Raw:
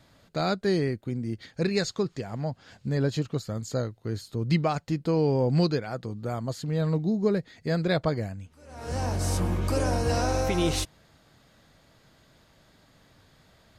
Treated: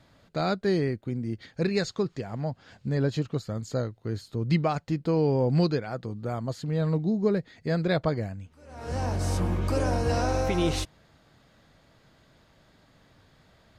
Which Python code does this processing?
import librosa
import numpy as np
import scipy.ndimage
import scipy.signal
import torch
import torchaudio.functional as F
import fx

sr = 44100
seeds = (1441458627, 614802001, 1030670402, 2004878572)

y = fx.high_shelf(x, sr, hz=6000.0, db=-8.0)